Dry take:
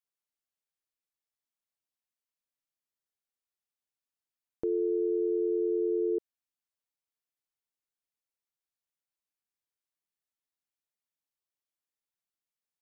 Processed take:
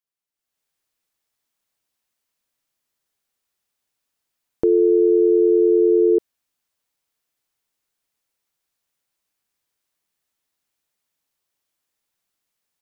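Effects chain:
automatic gain control gain up to 13.5 dB

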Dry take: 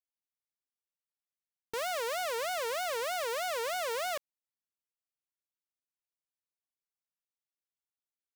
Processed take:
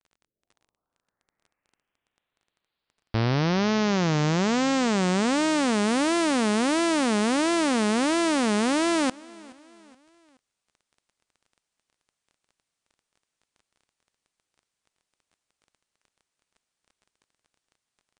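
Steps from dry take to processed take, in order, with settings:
turntable start at the beginning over 2.70 s
automatic gain control gain up to 4 dB
surface crackle 34 per second −57 dBFS
change of speed 0.459×
pitch vibrato 3.6 Hz 12 cents
on a send: repeating echo 424 ms, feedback 45%, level −23 dB
on the sum: level +7 dB

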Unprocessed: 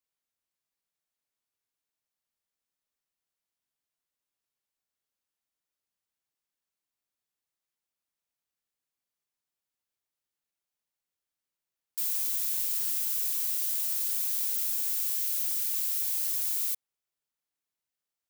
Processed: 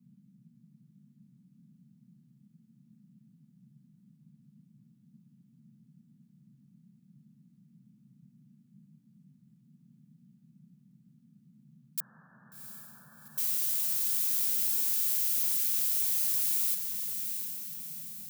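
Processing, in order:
0:12.00–0:13.38: linear-phase brick-wall low-pass 1,800 Hz
feedback delay with all-pass diffusion 735 ms, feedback 48%, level −6 dB
noise in a band 130–230 Hz −60 dBFS

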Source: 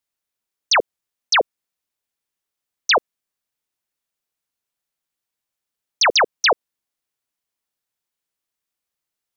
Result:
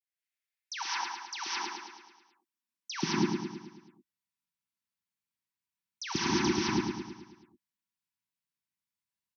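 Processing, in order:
noise gate with hold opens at −20 dBFS
elliptic band-stop filter 310–910 Hz, stop band 50 dB
parametric band 1,300 Hz −3.5 dB 0.27 octaves
high-pass filter sweep 1,900 Hz → 98 Hz, 0:00.62–0:03.38
high-shelf EQ 4,700 Hz −6 dB
brickwall limiter −15.5 dBFS, peak gain reduction 10.5 dB
compressor whose output falls as the input rises −32 dBFS, ratio −1
comb filter 5.2 ms, depth 40%
all-pass dispersion lows, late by 54 ms, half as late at 1,500 Hz
on a send: repeating echo 108 ms, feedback 55%, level −5 dB
on the sum: reverb whose tail is shaped and stops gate 230 ms rising, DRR −6 dB
level −4 dB

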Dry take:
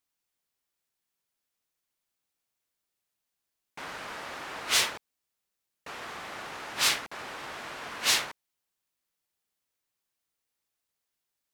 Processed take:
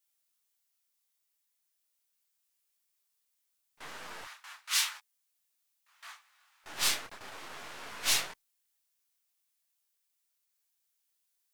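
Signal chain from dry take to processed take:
gain on one half-wave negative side −7 dB
0:04.24–0:06.64: high-pass filter 980 Hz 24 dB per octave
noise gate with hold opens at −31 dBFS
high-shelf EQ 5,000 Hz +6 dB
background noise blue −75 dBFS
micro pitch shift up and down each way 12 cents

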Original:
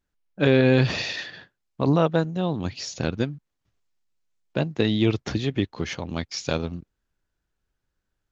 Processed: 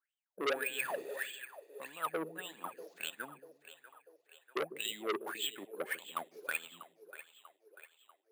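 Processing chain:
high-pass filter 170 Hz 24 dB per octave
in parallel at +2 dB: compressor whose output falls as the input rises −24 dBFS, ratio −0.5
on the sum: LFO wah 1.7 Hz 380–3,200 Hz, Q 13
bad sample-rate conversion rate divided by 4×, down filtered, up hold
on a send: echo with a time of its own for lows and highs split 420 Hz, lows 147 ms, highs 642 ms, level −15 dB
on the sum: saturating transformer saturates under 2,400 Hz

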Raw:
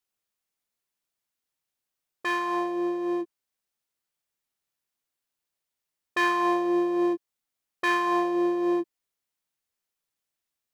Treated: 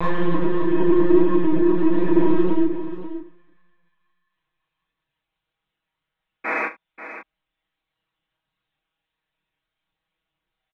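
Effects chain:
on a send: feedback echo with a high-pass in the loop 83 ms, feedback 61%, high-pass 800 Hz, level −22 dB
on the sum: extreme stretch with random phases 4.2×, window 0.05 s, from 0:02.60
linear-prediction vocoder at 8 kHz pitch kept
sound drawn into the spectrogram noise, 0:06.44–0:06.66, 210–2,600 Hz −33 dBFS
in parallel at −11.5 dB: hard clipping −30.5 dBFS, distortion −7 dB
on the sum: multi-voice chorus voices 2, 1.5 Hz, delay 29 ms, depth 3 ms
comb filter 6.3 ms, depth 92%
multi-tap delay 42/73/536 ms −13/−18/−12 dB
level +8 dB

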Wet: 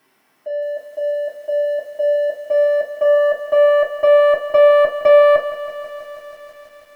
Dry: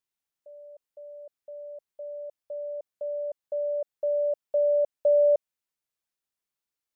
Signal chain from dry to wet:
downward compressor 2 to 1, threshold −25 dBFS, peak gain reduction 4 dB
asymmetric clip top −33 dBFS, bottom −20.5 dBFS
power curve on the samples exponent 0.7
convolution reverb RT60 0.30 s, pre-delay 3 ms, DRR −4.5 dB
feedback echo at a low word length 162 ms, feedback 80%, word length 8 bits, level −13 dB
level +2 dB

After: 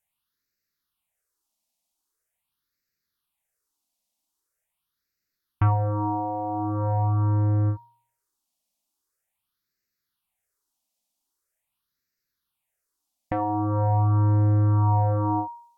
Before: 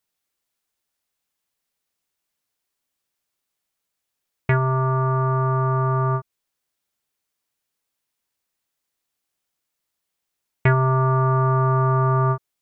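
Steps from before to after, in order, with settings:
all-pass phaser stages 6, 0.54 Hz, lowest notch 130–1,100 Hz
speed change −20%
hum removal 117.9 Hz, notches 39

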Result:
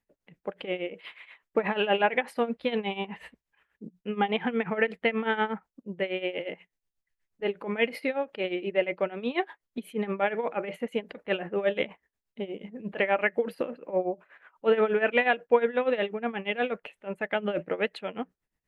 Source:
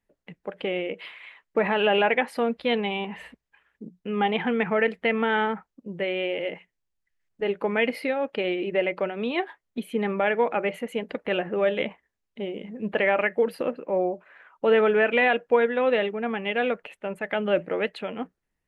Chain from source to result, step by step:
amplitude tremolo 8.3 Hz, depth 82%

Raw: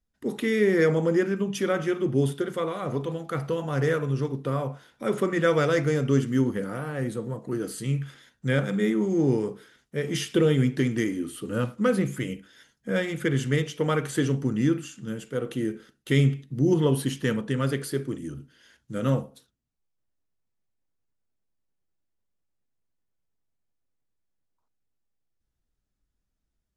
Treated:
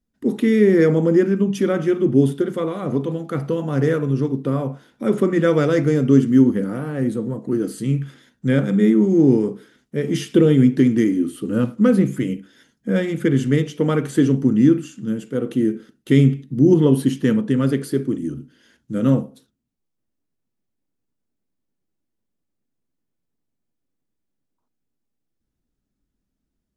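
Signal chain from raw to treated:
parametric band 250 Hz +11.5 dB 1.6 octaves

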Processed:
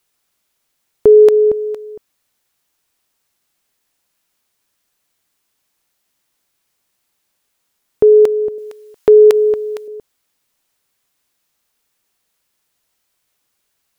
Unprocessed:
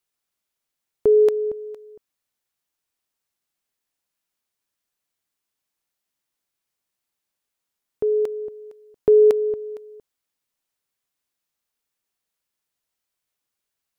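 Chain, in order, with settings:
0:08.58–0:09.88: tilt shelving filter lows −8 dB, about 660 Hz
boost into a limiter +14 dB
level −1 dB

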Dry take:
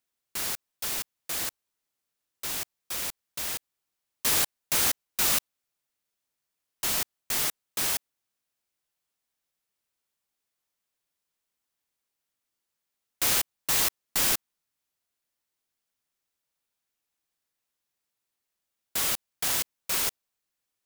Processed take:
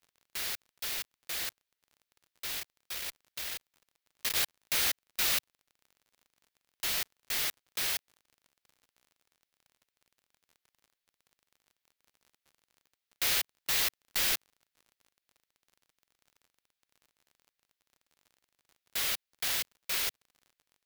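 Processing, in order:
octave-band graphic EQ 125/250/1,000/2,000/4,000/8,000 Hz −4/−6/−4/+4/+4/−4 dB
surface crackle 42 per second −44 dBFS
0:02.58–0:04.36: saturating transformer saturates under 2,200 Hz
level −4.5 dB

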